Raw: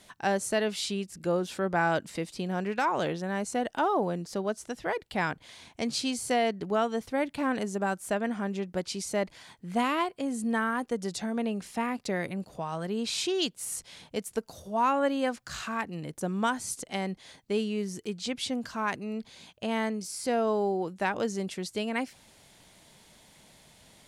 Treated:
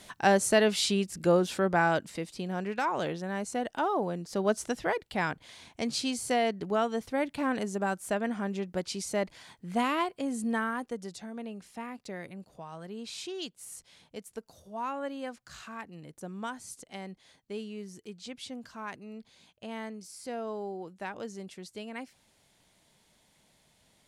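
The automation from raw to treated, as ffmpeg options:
-af "volume=13dB,afade=t=out:st=1.3:d=0.86:silence=0.446684,afade=t=in:st=4.28:d=0.3:silence=0.375837,afade=t=out:st=4.58:d=0.43:silence=0.446684,afade=t=out:st=10.44:d=0.75:silence=0.375837"

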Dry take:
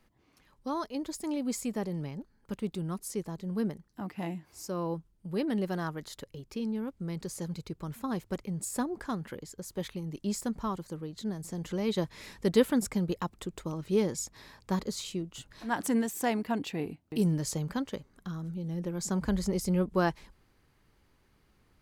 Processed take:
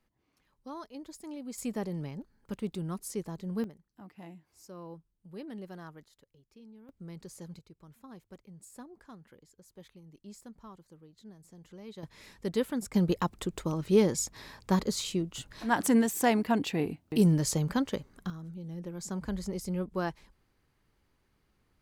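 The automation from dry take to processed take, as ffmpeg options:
-af "asetnsamples=n=441:p=0,asendcmd='1.58 volume volume -1dB;3.64 volume volume -12dB;6.04 volume volume -19.5dB;6.89 volume volume -8.5dB;7.59 volume volume -16dB;12.03 volume volume -6dB;12.94 volume volume 4dB;18.3 volume volume -5.5dB',volume=-9dB"

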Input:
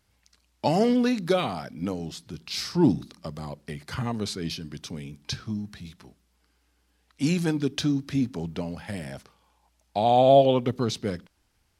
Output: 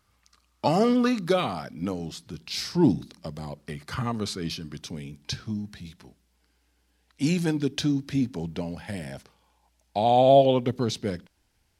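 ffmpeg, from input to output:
-af "asetnsamples=n=441:p=0,asendcmd='1.25 equalizer g 2.5;2.4 equalizer g -6;3.57 equalizer g 6;4.81 equalizer g -5.5',equalizer=f=1.2k:t=o:w=0.26:g=14"

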